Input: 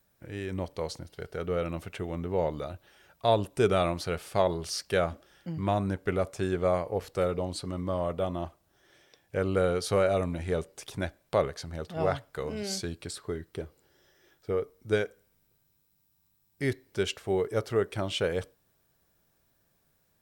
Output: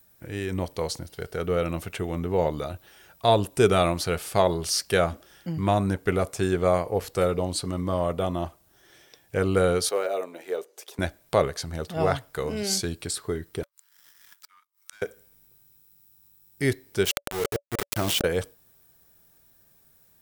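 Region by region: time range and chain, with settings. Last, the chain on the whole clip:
9.89–10.99 s: ladder high-pass 340 Hz, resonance 35% + hard clipper -21 dBFS + decimation joined by straight lines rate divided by 2×
13.63–15.02 s: Chebyshev high-pass 910 Hz, order 10 + waveshaping leveller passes 3 + inverted gate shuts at -40 dBFS, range -29 dB
17.05–18.24 s: slow attack 230 ms + small samples zeroed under -34.5 dBFS + decay stretcher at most 37 dB/s
whole clip: treble shelf 7.3 kHz +9.5 dB; band-stop 570 Hz, Q 19; trim +5 dB

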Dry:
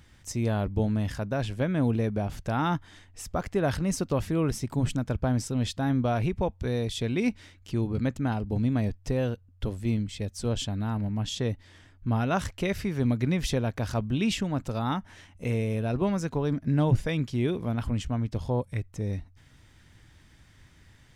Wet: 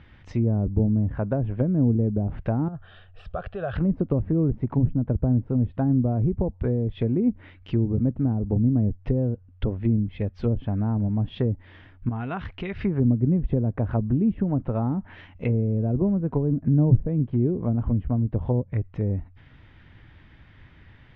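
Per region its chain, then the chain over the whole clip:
2.68–3.76 s: peaking EQ 800 Hz +4 dB 0.98 oct + compression 2.5:1, threshold -32 dBFS + static phaser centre 1.4 kHz, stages 8
12.09–12.81 s: low-pass 7.1 kHz + band-stop 570 Hz, Q 5.3 + compression 2:1, threshold -39 dBFS
whole clip: low-pass 3.1 kHz 24 dB/octave; low-pass that closes with the level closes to 370 Hz, closed at -23.5 dBFS; trim +5.5 dB

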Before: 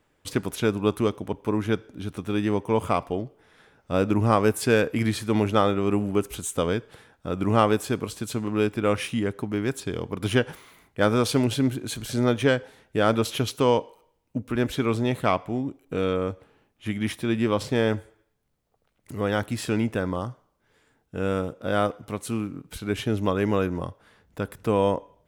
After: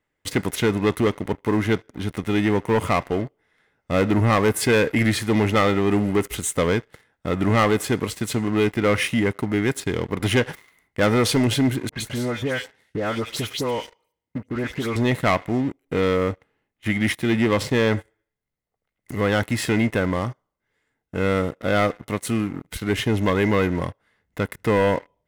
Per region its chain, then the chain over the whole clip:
11.89–14.96 s: high-pass 50 Hz + phase dispersion highs, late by 118 ms, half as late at 2.1 kHz + compression 2.5:1, threshold -32 dBFS
whole clip: waveshaping leveller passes 3; peaking EQ 2.1 kHz +12.5 dB 0.34 oct; band-stop 2.3 kHz, Q 9.1; trim -5.5 dB

